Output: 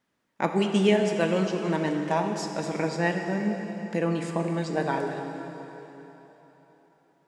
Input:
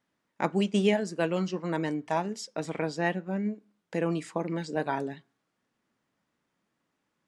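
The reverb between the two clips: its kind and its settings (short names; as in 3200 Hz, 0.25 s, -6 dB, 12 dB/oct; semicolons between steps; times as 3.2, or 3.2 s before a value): plate-style reverb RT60 3.8 s, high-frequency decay 0.9×, DRR 3.5 dB; gain +2 dB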